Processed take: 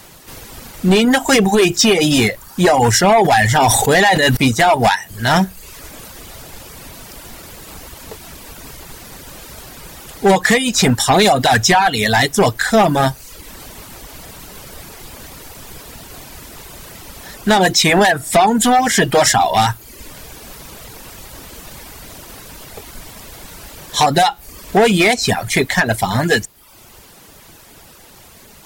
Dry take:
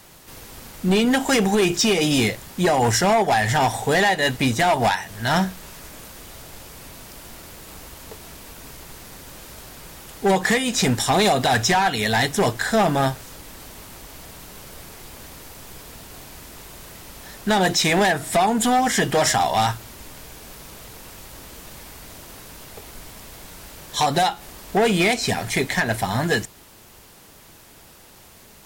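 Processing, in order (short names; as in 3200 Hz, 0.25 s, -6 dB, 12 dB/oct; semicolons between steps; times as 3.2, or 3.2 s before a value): reverb removal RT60 0.68 s; 3.14–4.37 sustainer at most 32 dB/s; gain +7 dB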